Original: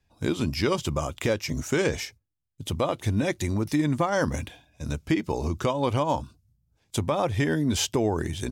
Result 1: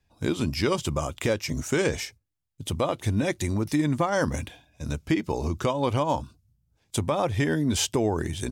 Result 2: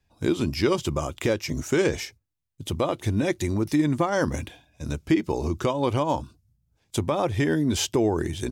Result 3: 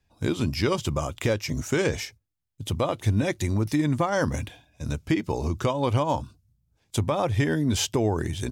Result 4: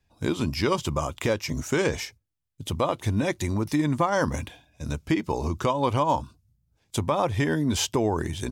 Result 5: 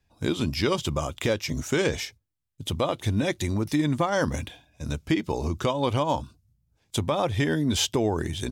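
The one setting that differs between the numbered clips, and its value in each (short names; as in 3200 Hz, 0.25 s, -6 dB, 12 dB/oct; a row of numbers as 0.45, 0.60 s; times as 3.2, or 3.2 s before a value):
dynamic EQ, frequency: 8700, 350, 110, 1000, 3500 Hz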